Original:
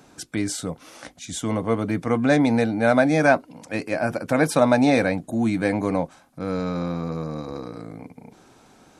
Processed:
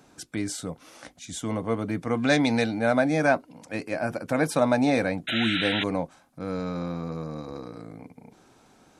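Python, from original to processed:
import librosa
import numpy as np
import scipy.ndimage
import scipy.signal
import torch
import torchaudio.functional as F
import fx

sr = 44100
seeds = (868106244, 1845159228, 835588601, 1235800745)

y = fx.peak_eq(x, sr, hz=4100.0, db=10.0, octaves=2.2, at=(2.17, 2.79))
y = fx.spec_paint(y, sr, seeds[0], shape='noise', start_s=5.27, length_s=0.57, low_hz=1300.0, high_hz=4000.0, level_db=-24.0)
y = y * 10.0 ** (-4.5 / 20.0)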